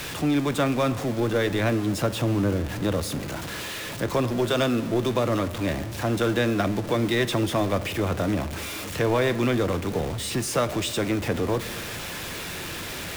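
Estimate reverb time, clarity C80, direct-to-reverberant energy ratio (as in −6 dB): 1.7 s, 16.5 dB, 11.0 dB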